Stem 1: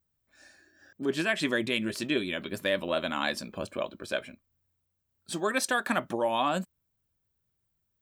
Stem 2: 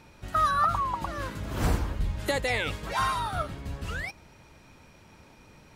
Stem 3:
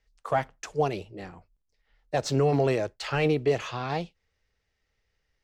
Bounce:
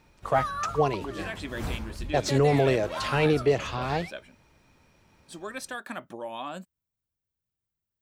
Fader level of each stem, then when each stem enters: -9.0 dB, -7.5 dB, +1.5 dB; 0.00 s, 0.00 s, 0.00 s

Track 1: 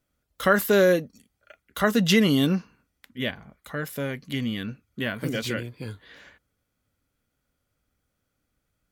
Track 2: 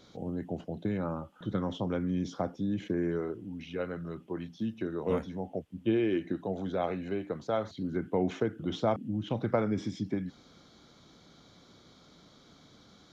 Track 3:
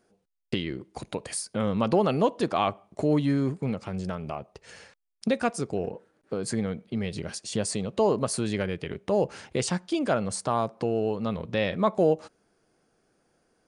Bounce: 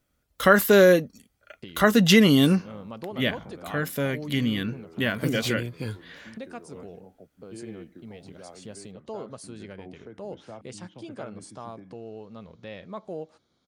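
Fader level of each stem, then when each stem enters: +3.0 dB, -15.0 dB, -14.0 dB; 0.00 s, 1.65 s, 1.10 s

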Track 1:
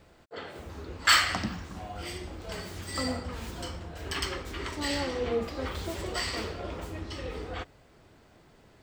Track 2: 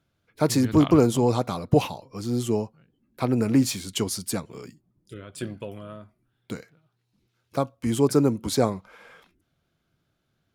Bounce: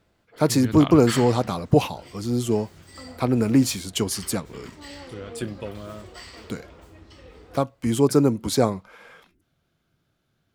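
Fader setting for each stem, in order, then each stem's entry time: -10.0 dB, +2.0 dB; 0.00 s, 0.00 s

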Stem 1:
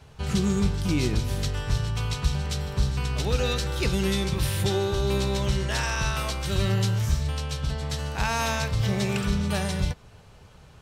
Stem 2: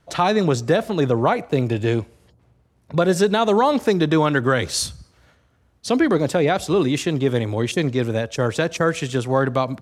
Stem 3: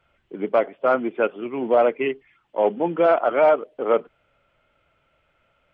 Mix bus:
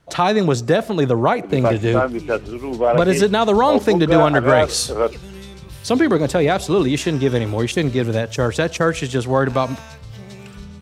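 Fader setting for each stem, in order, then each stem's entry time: -11.5 dB, +2.0 dB, +0.5 dB; 1.30 s, 0.00 s, 1.10 s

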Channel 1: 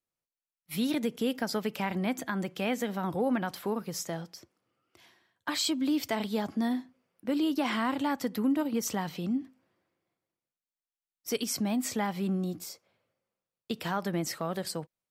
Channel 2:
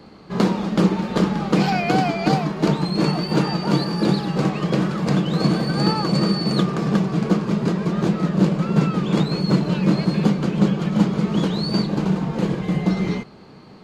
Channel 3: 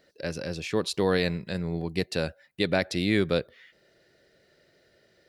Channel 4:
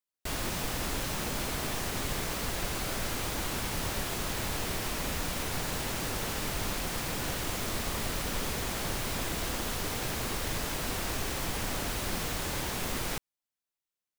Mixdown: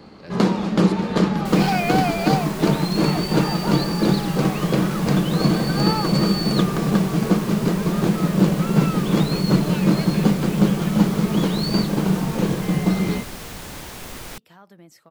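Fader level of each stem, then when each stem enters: -16.5 dB, +0.5 dB, -11.0 dB, -2.0 dB; 0.65 s, 0.00 s, 0.00 s, 1.20 s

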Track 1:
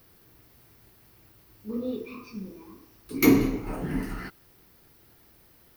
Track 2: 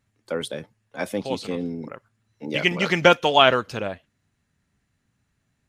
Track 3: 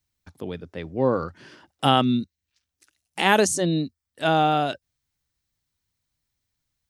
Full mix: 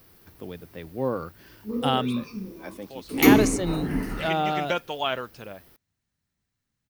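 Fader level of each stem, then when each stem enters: +2.5 dB, -12.0 dB, -5.5 dB; 0.00 s, 1.65 s, 0.00 s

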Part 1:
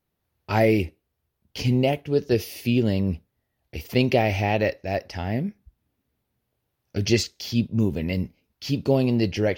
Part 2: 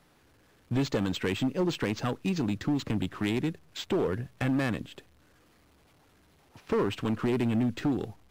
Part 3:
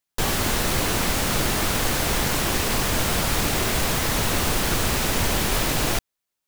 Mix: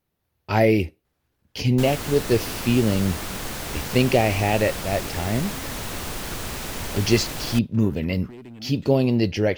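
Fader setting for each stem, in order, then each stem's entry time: +1.5 dB, -14.0 dB, -8.5 dB; 0.00 s, 1.05 s, 1.60 s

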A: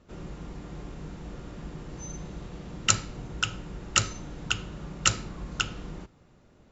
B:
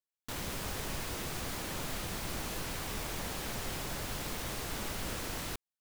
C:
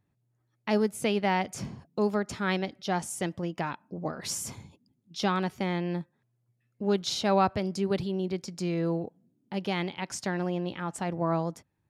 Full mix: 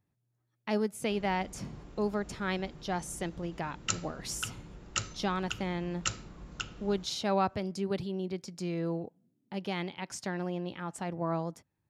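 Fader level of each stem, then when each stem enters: -9.5 dB, mute, -4.5 dB; 1.00 s, mute, 0.00 s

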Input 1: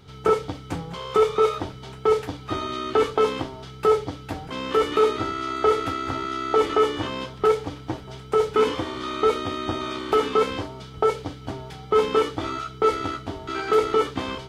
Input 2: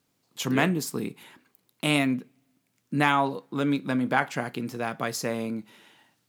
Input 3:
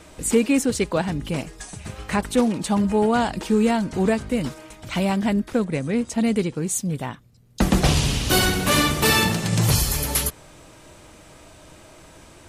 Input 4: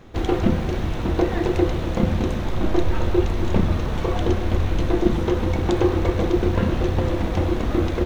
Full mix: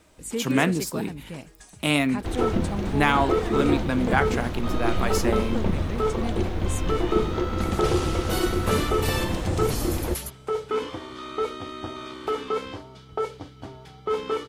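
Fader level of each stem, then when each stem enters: -7.0 dB, +1.5 dB, -11.5 dB, -5.5 dB; 2.15 s, 0.00 s, 0.00 s, 2.10 s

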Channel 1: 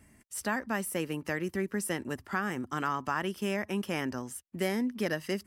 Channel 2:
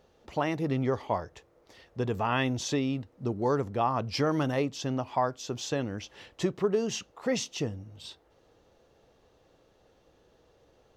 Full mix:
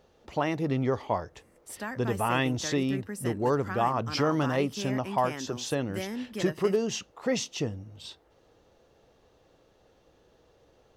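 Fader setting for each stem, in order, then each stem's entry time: -5.0 dB, +1.0 dB; 1.35 s, 0.00 s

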